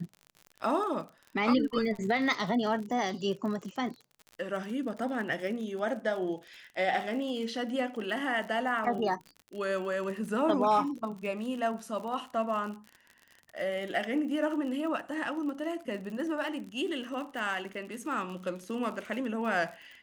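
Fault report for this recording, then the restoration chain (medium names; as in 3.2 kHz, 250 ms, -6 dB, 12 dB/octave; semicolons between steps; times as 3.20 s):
crackle 50 per s -38 dBFS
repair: de-click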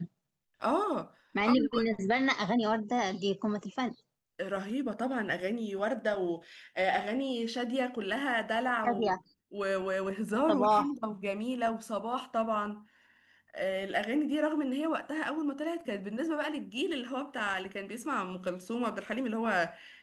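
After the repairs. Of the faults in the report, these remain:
nothing left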